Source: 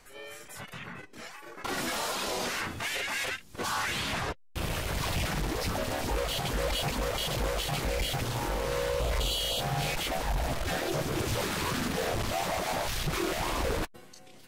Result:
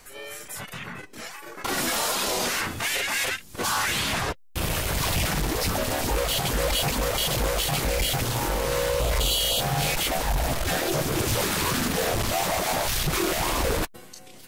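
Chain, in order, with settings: treble shelf 7.2 kHz +8.5 dB; trim +5 dB

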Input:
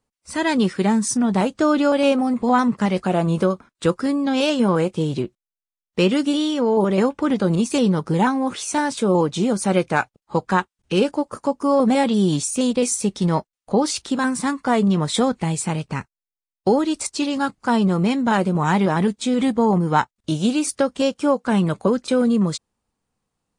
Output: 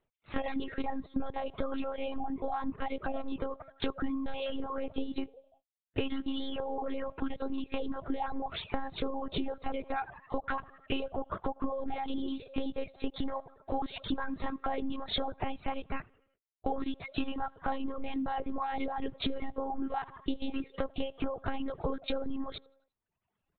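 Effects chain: coarse spectral quantiser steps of 15 dB; comb 2.7 ms, depth 36%; frequency-shifting echo 87 ms, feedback 53%, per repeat +82 Hz, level -23 dB; dynamic bell 680 Hz, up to +6 dB, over -36 dBFS, Q 2.2; high-pass 120 Hz 12 dB/octave; peak limiter -14.5 dBFS, peak gain reduction 11 dB; monotone LPC vocoder at 8 kHz 270 Hz; compression 16:1, threshold -27 dBFS, peak gain reduction 11.5 dB; reverb removal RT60 0.88 s

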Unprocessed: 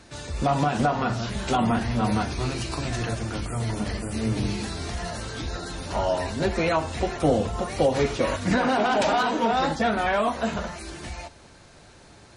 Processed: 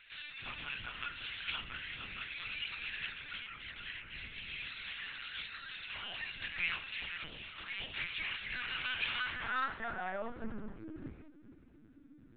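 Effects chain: high-pass 68 Hz 12 dB/octave; high-order bell 620 Hz -15 dB; compression 2:1, threshold -30 dBFS, peak gain reduction 6.5 dB; band-pass sweep 2.7 kHz -> 290 Hz, 9.12–10.66 s; thinning echo 448 ms, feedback 25%, high-pass 160 Hz, level -15 dB; LPC vocoder at 8 kHz pitch kept; loudspeaker Doppler distortion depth 0.23 ms; trim +3 dB

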